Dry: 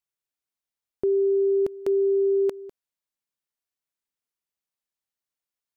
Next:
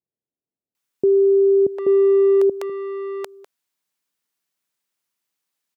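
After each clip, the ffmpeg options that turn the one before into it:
-filter_complex "[0:a]highpass=130,asplit=2[a][b];[b]asoftclip=type=tanh:threshold=-27.5dB,volume=-7dB[c];[a][c]amix=inputs=2:normalize=0,acrossover=split=580[d][e];[e]adelay=750[f];[d][f]amix=inputs=2:normalize=0,volume=7dB"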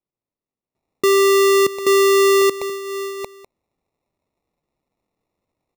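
-af "acrusher=samples=28:mix=1:aa=0.000001,volume=1dB"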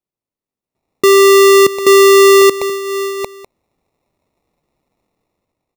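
-af "dynaudnorm=f=220:g=7:m=9dB"

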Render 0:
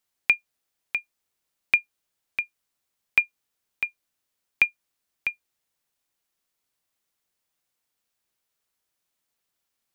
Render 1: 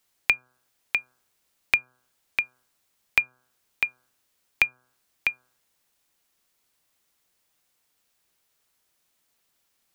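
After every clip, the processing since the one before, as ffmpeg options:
-filter_complex "[0:a]bandreject=f=126.2:t=h:w=4,bandreject=f=252.4:t=h:w=4,bandreject=f=378.6:t=h:w=4,bandreject=f=504.8:t=h:w=4,bandreject=f=631:t=h:w=4,bandreject=f=757.2:t=h:w=4,bandreject=f=883.4:t=h:w=4,bandreject=f=1.0096k:t=h:w=4,bandreject=f=1.1358k:t=h:w=4,bandreject=f=1.262k:t=h:w=4,bandreject=f=1.3882k:t=h:w=4,bandreject=f=1.5144k:t=h:w=4,bandreject=f=1.6406k:t=h:w=4,acrossover=split=180[a][b];[b]acompressor=threshold=-33dB:ratio=2[c];[a][c]amix=inputs=2:normalize=0,volume=8dB"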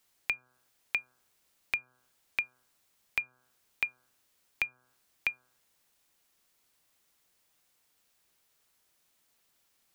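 -af "alimiter=limit=-13.5dB:level=0:latency=1:release=305"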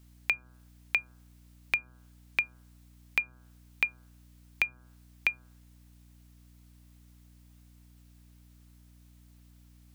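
-af "aeval=exprs='val(0)+0.00112*(sin(2*PI*60*n/s)+sin(2*PI*2*60*n/s)/2+sin(2*PI*3*60*n/s)/3+sin(2*PI*4*60*n/s)/4+sin(2*PI*5*60*n/s)/5)':c=same,volume=3.5dB"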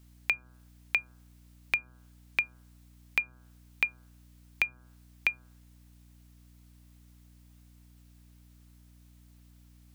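-af anull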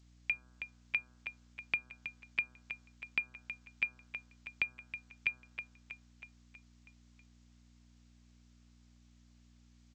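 -filter_complex "[0:a]asplit=2[a][b];[b]aecho=0:1:321|642|963|1284|1605|1926:0.316|0.177|0.0992|0.0555|0.0311|0.0174[c];[a][c]amix=inputs=2:normalize=0,volume=-5.5dB" -ar 16000 -c:a g722

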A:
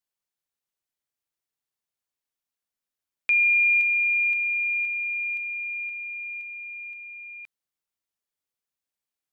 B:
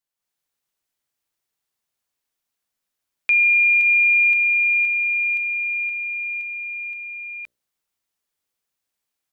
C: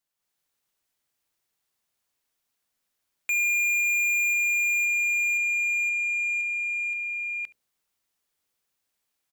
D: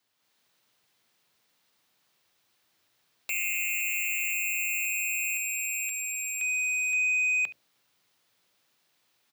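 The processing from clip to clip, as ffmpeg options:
-af "bandreject=f=60:t=h:w=6,bandreject=f=120:t=h:w=6,bandreject=f=180:t=h:w=6,bandreject=f=240:t=h:w=6,bandreject=f=300:t=h:w=6,bandreject=f=360:t=h:w=6,bandreject=f=420:t=h:w=6,bandreject=f=480:t=h:w=6,bandreject=f=540:t=h:w=6,bandreject=f=600:t=h:w=6,dynaudnorm=f=150:g=3:m=7.5dB,alimiter=limit=-12.5dB:level=0:latency=1:release=82"
-af "asoftclip=type=tanh:threshold=-25.5dB,aecho=1:1:71:0.0841,volume=2dB"
-af "afreqshift=91,aeval=exprs='0.126*sin(PI/2*4.47*val(0)/0.126)':c=same,equalizer=f=4k:t=o:w=1:g=3,equalizer=f=8k:t=o:w=1:g=-4,equalizer=f=16k:t=o:w=1:g=-7,volume=-6dB"

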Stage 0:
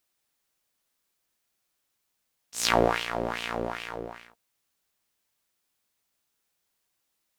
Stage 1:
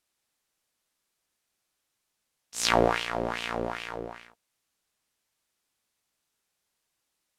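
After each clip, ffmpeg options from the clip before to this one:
-af "lowpass=12k"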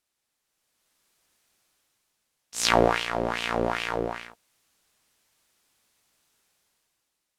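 -af "dynaudnorm=f=140:g=11:m=11dB,volume=-1dB"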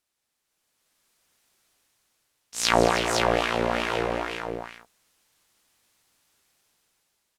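-af "aecho=1:1:166|218|318|513:0.211|0.251|0.266|0.631"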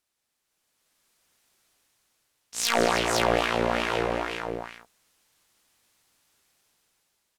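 -af "aeval=exprs='0.299*(abs(mod(val(0)/0.299+3,4)-2)-1)':c=same"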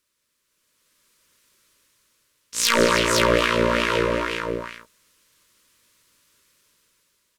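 -af "asuperstop=centerf=760:order=12:qfactor=2.7,volume=6dB"

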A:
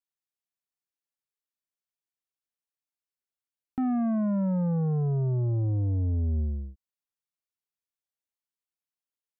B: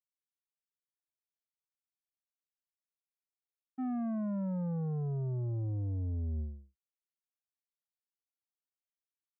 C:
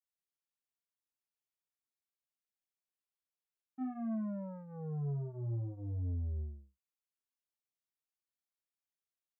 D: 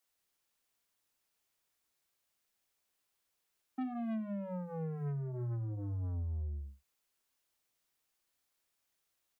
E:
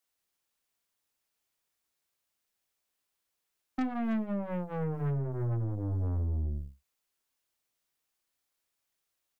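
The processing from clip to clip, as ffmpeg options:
-af "agate=range=-33dB:threshold=-22dB:ratio=3:detection=peak,volume=-2.5dB"
-af "flanger=delay=22.5:depth=5.7:speed=0.49,volume=-1dB"
-filter_complex "[0:a]aeval=exprs='0.0211*(cos(1*acos(clip(val(0)/0.0211,-1,1)))-cos(1*PI/2))+0.00168*(cos(5*acos(clip(val(0)/0.0211,-1,1)))-cos(5*PI/2))':c=same,acrossover=split=180[a][b];[a]adelay=50[c];[c][b]amix=inputs=2:normalize=0,acompressor=threshold=-46dB:ratio=6,volume=10dB"
-af "aeval=exprs='0.0335*(cos(1*acos(clip(val(0)/0.0335,-1,1)))-cos(1*PI/2))+0.00531*(cos(3*acos(clip(val(0)/0.0335,-1,1)))-cos(3*PI/2))+0.00119*(cos(5*acos(clip(val(0)/0.0335,-1,1)))-cos(5*PI/2))+0.00237*(cos(6*acos(clip(val(0)/0.0335,-1,1)))-cos(6*PI/2))+0.00168*(cos(7*acos(clip(val(0)/0.0335,-1,1)))-cos(7*PI/2))':c=same,volume=8dB"

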